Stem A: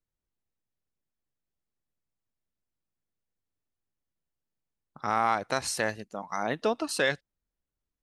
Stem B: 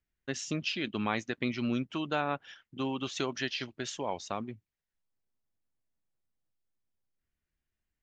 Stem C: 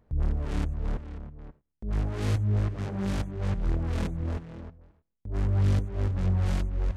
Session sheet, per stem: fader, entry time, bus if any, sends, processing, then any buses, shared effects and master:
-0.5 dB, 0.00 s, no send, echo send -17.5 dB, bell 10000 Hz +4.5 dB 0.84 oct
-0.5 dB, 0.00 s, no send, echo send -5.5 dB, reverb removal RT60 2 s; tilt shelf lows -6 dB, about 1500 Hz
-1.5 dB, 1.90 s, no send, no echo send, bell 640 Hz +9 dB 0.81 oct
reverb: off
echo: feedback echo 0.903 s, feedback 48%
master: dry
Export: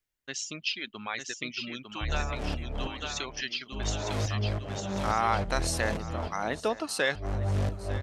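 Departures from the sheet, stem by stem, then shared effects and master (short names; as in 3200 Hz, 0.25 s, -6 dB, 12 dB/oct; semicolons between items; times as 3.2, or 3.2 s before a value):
stem A: missing bell 10000 Hz +4.5 dB 0.84 oct; master: extra low shelf 350 Hz -4 dB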